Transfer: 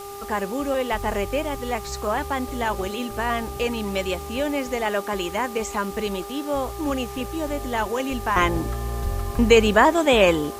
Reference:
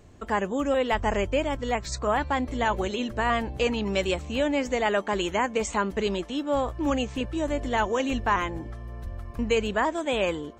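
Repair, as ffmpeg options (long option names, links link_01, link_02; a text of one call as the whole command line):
ffmpeg -i in.wav -af "adeclick=threshold=4,bandreject=frequency=401.4:width_type=h:width=4,bandreject=frequency=802.8:width_type=h:width=4,bandreject=frequency=1204.2:width_type=h:width=4,afwtdn=0.0071,asetnsamples=nb_out_samples=441:pad=0,asendcmd='8.36 volume volume -9.5dB',volume=0dB" out.wav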